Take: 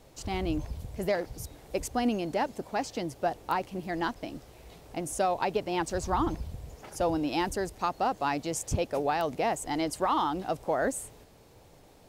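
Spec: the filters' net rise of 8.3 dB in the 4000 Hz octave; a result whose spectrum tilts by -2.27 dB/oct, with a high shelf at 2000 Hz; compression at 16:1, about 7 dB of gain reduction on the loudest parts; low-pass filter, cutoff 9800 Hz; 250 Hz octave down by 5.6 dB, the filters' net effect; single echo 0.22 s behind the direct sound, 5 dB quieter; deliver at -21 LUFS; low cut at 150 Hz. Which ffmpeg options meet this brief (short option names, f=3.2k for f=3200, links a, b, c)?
-af "highpass=150,lowpass=9.8k,equalizer=f=250:t=o:g=-7.5,highshelf=f=2k:g=5.5,equalizer=f=4k:t=o:g=5.5,acompressor=threshold=-29dB:ratio=16,aecho=1:1:220:0.562,volume=13dB"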